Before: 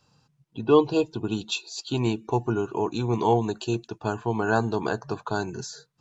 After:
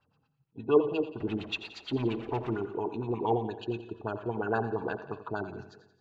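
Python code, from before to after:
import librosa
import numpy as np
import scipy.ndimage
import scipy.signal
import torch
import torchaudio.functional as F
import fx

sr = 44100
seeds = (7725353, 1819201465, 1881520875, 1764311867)

y = fx.zero_step(x, sr, step_db=-29.5, at=(1.2, 2.57))
y = fx.comb_fb(y, sr, f0_hz=89.0, decay_s=0.61, harmonics='odd', damping=0.0, mix_pct=70)
y = fx.filter_lfo_lowpass(y, sr, shape='sine', hz=8.6, low_hz=350.0, high_hz=3100.0, q=2.2)
y = fx.echo_feedback(y, sr, ms=87, feedback_pct=55, wet_db=-13.0)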